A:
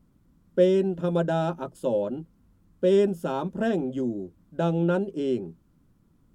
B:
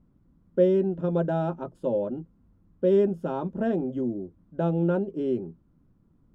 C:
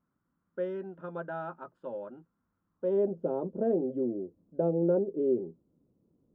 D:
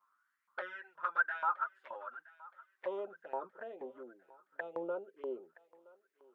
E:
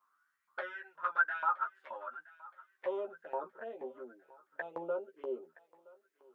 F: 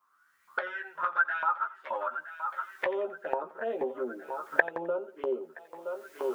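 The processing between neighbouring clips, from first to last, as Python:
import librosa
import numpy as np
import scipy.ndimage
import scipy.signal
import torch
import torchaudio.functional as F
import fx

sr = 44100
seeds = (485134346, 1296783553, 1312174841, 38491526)

y1 = fx.lowpass(x, sr, hz=1000.0, slope=6)
y2 = fx.filter_sweep_bandpass(y1, sr, from_hz=1400.0, to_hz=480.0, start_s=2.67, end_s=3.18, q=2.3)
y2 = fx.low_shelf(y2, sr, hz=290.0, db=10.0)
y3 = fx.env_flanger(y2, sr, rest_ms=10.5, full_db=-26.0)
y3 = fx.filter_lfo_highpass(y3, sr, shape='saw_up', hz=2.1, low_hz=990.0, high_hz=2200.0, q=5.3)
y3 = fx.echo_thinned(y3, sr, ms=970, feedback_pct=45, hz=580.0, wet_db=-20.0)
y3 = F.gain(torch.from_numpy(y3), 4.5).numpy()
y4 = fx.doubler(y3, sr, ms=13.0, db=-5.0)
y5 = fx.recorder_agc(y4, sr, target_db=-26.0, rise_db_per_s=28.0, max_gain_db=30)
y5 = fx.echo_feedback(y5, sr, ms=87, feedback_pct=34, wet_db=-18)
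y5 = F.gain(torch.from_numpy(y5), 3.0).numpy()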